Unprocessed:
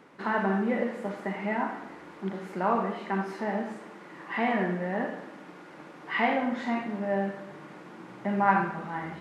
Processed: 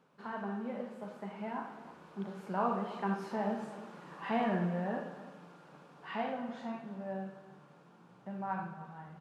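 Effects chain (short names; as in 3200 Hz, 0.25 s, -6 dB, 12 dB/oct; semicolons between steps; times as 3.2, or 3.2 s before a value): Doppler pass-by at 3.8, 10 m/s, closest 13 m; thirty-one-band EQ 160 Hz +7 dB, 315 Hz -9 dB, 2000 Hz -11 dB; outdoor echo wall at 54 m, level -16 dB; gain -3 dB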